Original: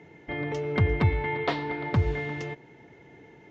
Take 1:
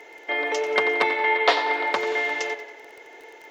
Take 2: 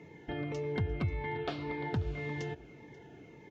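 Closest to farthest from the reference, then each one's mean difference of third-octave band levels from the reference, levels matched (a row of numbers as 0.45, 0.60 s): 2, 1; 3.5, 10.0 dB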